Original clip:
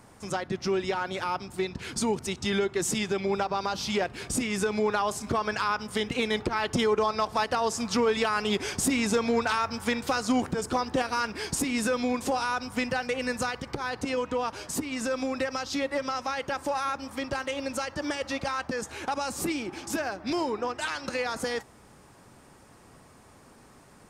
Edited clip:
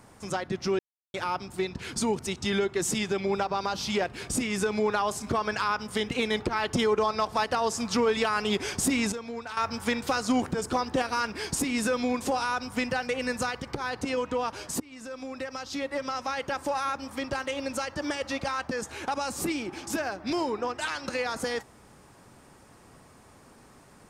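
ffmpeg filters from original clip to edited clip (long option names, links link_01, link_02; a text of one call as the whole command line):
ffmpeg -i in.wav -filter_complex "[0:a]asplit=6[link_01][link_02][link_03][link_04][link_05][link_06];[link_01]atrim=end=0.79,asetpts=PTS-STARTPTS,afade=type=out:start_time=0.786:duration=0.004:curve=hsin[link_07];[link_02]atrim=start=0.79:end=1.14,asetpts=PTS-STARTPTS,volume=0[link_08];[link_03]atrim=start=1.14:end=9.122,asetpts=PTS-STARTPTS,afade=type=in:duration=0.004:curve=hsin[link_09];[link_04]atrim=start=9.118:end=9.572,asetpts=PTS-STARTPTS,volume=-11.5dB[link_10];[link_05]atrim=start=9.568:end=14.8,asetpts=PTS-STARTPTS,afade=type=out:start_time=5.228:duration=0.004:curve=hsin:silence=0.149624[link_11];[link_06]atrim=start=14.8,asetpts=PTS-STARTPTS,afade=type=in:duration=1.57:silence=0.149624[link_12];[link_07][link_08][link_09]concat=n=3:v=0:a=1[link_13];[link_13][link_10]acrossfade=duration=0.004:curve1=hsin:curve2=hsin[link_14];[link_11][link_12]concat=n=2:v=0:a=1[link_15];[link_14][link_15]acrossfade=duration=0.004:curve1=hsin:curve2=hsin" out.wav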